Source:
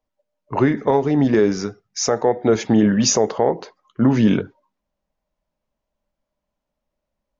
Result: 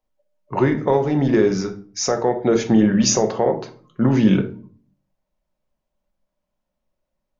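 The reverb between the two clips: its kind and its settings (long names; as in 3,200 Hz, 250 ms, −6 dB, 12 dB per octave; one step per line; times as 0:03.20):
rectangular room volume 380 cubic metres, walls furnished, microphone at 0.98 metres
level −1.5 dB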